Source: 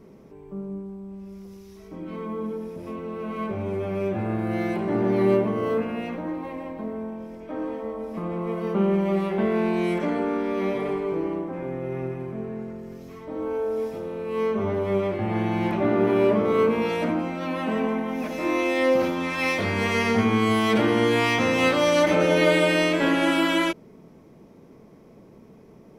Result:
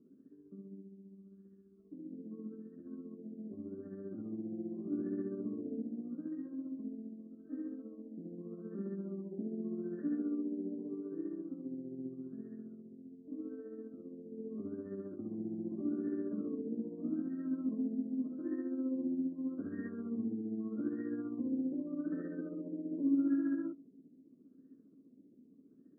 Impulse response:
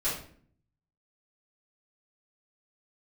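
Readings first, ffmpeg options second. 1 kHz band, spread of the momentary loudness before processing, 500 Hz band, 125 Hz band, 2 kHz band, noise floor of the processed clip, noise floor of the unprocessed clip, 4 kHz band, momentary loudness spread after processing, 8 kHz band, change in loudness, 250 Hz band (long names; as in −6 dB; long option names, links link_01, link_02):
below −35 dB, 15 LU, −22.5 dB, −20.5 dB, below −30 dB, −62 dBFS, −50 dBFS, below −40 dB, 13 LU, can't be measured, −15.5 dB, −10.5 dB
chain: -filter_complex "[0:a]asplit=2[link_01][link_02];[1:a]atrim=start_sample=2205,afade=type=out:start_time=0.39:duration=0.01,atrim=end_sample=17640[link_03];[link_02][link_03]afir=irnorm=-1:irlink=0,volume=-31.5dB[link_04];[link_01][link_04]amix=inputs=2:normalize=0,alimiter=limit=-16dB:level=0:latency=1:release=12,asplit=3[link_05][link_06][link_07];[link_05]bandpass=frequency=270:width_type=q:width=8,volume=0dB[link_08];[link_06]bandpass=frequency=2290:width_type=q:width=8,volume=-6dB[link_09];[link_07]bandpass=frequency=3010:width_type=q:width=8,volume=-9dB[link_10];[link_08][link_09][link_10]amix=inputs=3:normalize=0,tremolo=f=15:d=0.46,afftfilt=real='re*lt(b*sr/1024,930*pow(1900/930,0.5+0.5*sin(2*PI*0.82*pts/sr)))':imag='im*lt(b*sr/1024,930*pow(1900/930,0.5+0.5*sin(2*PI*0.82*pts/sr)))':win_size=1024:overlap=0.75"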